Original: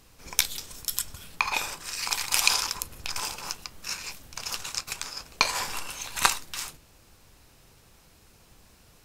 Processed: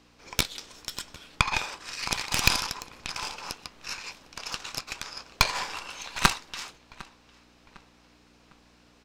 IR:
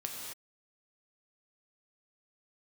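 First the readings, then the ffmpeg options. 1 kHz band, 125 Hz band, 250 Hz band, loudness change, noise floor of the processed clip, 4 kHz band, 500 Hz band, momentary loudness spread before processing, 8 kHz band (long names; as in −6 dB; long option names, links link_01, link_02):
+0.5 dB, +9.5 dB, +8.5 dB, −1.0 dB, −59 dBFS, −1.0 dB, +2.0 dB, 12 LU, −5.0 dB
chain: -filter_complex "[0:a]aeval=exprs='val(0)+0.00316*(sin(2*PI*60*n/s)+sin(2*PI*2*60*n/s)/2+sin(2*PI*3*60*n/s)/3+sin(2*PI*4*60*n/s)/4+sin(2*PI*5*60*n/s)/5)':channel_layout=same,acrossover=split=240 6100:gain=0.178 1 0.1[link_01][link_02][link_03];[link_01][link_02][link_03]amix=inputs=3:normalize=0,aeval=exprs='0.794*(cos(1*acos(clip(val(0)/0.794,-1,1)))-cos(1*PI/2))+0.224*(cos(6*acos(clip(val(0)/0.794,-1,1)))-cos(6*PI/2))':channel_layout=same,asplit=2[link_04][link_05];[link_05]adelay=754,lowpass=frequency=4000:poles=1,volume=-21.5dB,asplit=2[link_06][link_07];[link_07]adelay=754,lowpass=frequency=4000:poles=1,volume=0.42,asplit=2[link_08][link_09];[link_09]adelay=754,lowpass=frequency=4000:poles=1,volume=0.42[link_10];[link_06][link_08][link_10]amix=inputs=3:normalize=0[link_11];[link_04][link_11]amix=inputs=2:normalize=0"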